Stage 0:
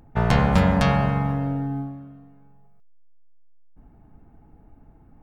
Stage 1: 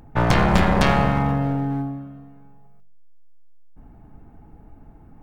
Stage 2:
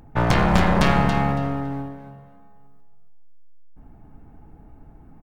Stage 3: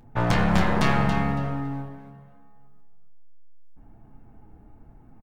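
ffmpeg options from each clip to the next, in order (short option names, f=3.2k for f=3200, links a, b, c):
-af "aeval=exprs='clip(val(0),-1,0.0708)':c=same,bandreject=f=46.72:t=h:w=4,bandreject=f=93.44:t=h:w=4,bandreject=f=140.16:t=h:w=4,bandreject=f=186.88:t=h:w=4,bandreject=f=233.6:t=h:w=4,bandreject=f=280.32:t=h:w=4,bandreject=f=327.04:t=h:w=4,bandreject=f=373.76:t=h:w=4,bandreject=f=420.48:t=h:w=4,bandreject=f=467.2:t=h:w=4,bandreject=f=513.92:t=h:w=4,bandreject=f=560.64:t=h:w=4,bandreject=f=607.36:t=h:w=4,bandreject=f=654.08:t=h:w=4,bandreject=f=700.8:t=h:w=4,volume=5.5dB"
-af "aecho=1:1:279|558|837:0.355|0.0745|0.0156,volume=-1dB"
-filter_complex "[0:a]flanger=delay=8.1:depth=2:regen=-41:speed=1.2:shape=sinusoidal,asplit=2[a][b];[b]adelay=28,volume=-11.5dB[c];[a][c]amix=inputs=2:normalize=0"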